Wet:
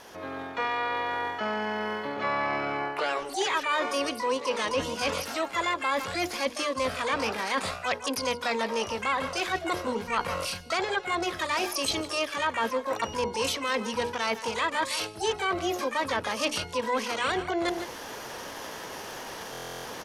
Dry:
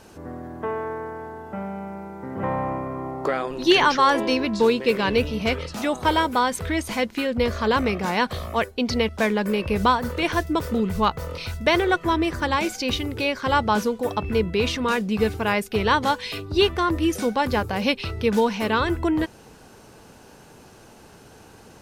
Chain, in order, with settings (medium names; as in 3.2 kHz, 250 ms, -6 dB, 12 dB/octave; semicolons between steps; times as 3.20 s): tone controls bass -12 dB, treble -3 dB; speed mistake 44.1 kHz file played as 48 kHz; low-pass that closes with the level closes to 2.9 kHz, closed at -16.5 dBFS; resonant high shelf 7.1 kHz -7 dB, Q 3; on a send: delay 160 ms -18.5 dB; on the sum: level rider gain up to 10 dB; hum notches 60/120/180/240/300/360/420/480 Hz; harmony voices +12 st -4 dB; reverse; compression 4:1, threshold -28 dBFS, peak gain reduction 18 dB; reverse; buffer glitch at 19.52 s, samples 1024, times 13